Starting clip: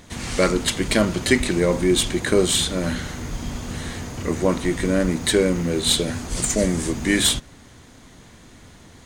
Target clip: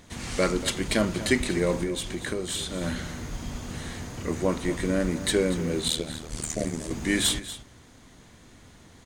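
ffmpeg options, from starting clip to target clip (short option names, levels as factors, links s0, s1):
-filter_complex "[0:a]asettb=1/sr,asplit=3[s0][s1][s2];[s0]atrim=end=1.834[s3];[s1]atrim=start=1.83:end=2.81,asetpts=PTS-STARTPTS,afade=t=in:d=0.004:c=qsin,afade=t=out:st=0.976:d=0.004:c=qsin,acompressor=threshold=0.0794:ratio=6[s4];[s2]atrim=start=2.806[s5];[s3][s4]acrossfade=d=0.004:c1=hsin:c2=qsin[s6];[s6][s5]acrossfade=d=0.004:c1=qsin:c2=hsin,asettb=1/sr,asplit=3[s7][s8][s9];[s7]atrim=end=5.884[s10];[s8]atrim=start=5.88:end=6.91,asetpts=PTS-STARTPTS,afade=t=in:d=0.004:c=qsin,afade=t=out:st=1.026:d=0.004:c=qsin,tremolo=f=77:d=0.974[s11];[s9]atrim=start=6.906[s12];[s10][s11]acrossfade=d=0.004:c1=hsin:c2=qsin[s13];[s13][s12]acrossfade=d=0.004:c1=qsin:c2=hsin,aecho=1:1:237:0.2,volume=0.531"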